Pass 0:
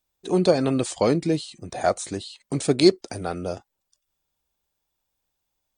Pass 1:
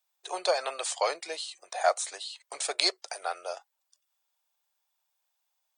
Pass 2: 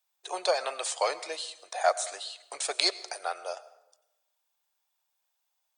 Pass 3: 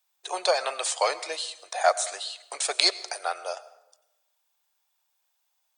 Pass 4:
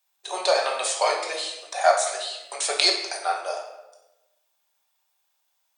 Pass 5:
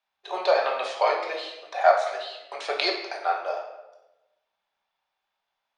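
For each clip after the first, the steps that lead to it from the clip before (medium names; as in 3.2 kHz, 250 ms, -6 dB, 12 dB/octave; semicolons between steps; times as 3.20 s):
inverse Chebyshev high-pass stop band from 250 Hz, stop band 50 dB
plate-style reverb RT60 0.96 s, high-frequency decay 0.65×, pre-delay 80 ms, DRR 16.5 dB
bass shelf 320 Hz -7.5 dB; trim +4.5 dB
simulated room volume 340 m³, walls mixed, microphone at 1.2 m
distance through air 280 m; trim +1.5 dB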